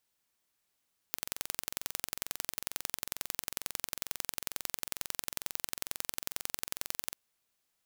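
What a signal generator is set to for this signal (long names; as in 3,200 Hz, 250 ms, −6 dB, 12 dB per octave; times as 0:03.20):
impulse train 22.2 per second, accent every 2, −5 dBFS 5.99 s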